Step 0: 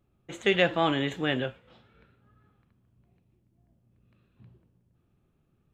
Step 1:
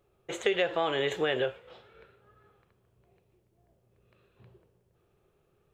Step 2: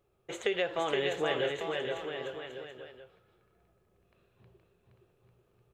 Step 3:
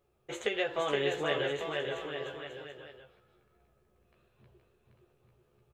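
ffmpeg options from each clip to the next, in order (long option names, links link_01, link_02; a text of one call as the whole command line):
ffmpeg -i in.wav -filter_complex "[0:a]asplit=2[link_01][link_02];[link_02]alimiter=limit=-21.5dB:level=0:latency=1,volume=-3dB[link_03];[link_01][link_03]amix=inputs=2:normalize=0,lowshelf=frequency=330:width_type=q:width=3:gain=-7,acompressor=threshold=-24dB:ratio=6" out.wav
ffmpeg -i in.wav -af "aecho=1:1:470|846|1147|1387|1580:0.631|0.398|0.251|0.158|0.1,volume=-3.5dB" out.wav
ffmpeg -i in.wav -filter_complex "[0:a]asplit=2[link_01][link_02];[link_02]adelay=14,volume=-3dB[link_03];[link_01][link_03]amix=inputs=2:normalize=0,volume=-1.5dB" out.wav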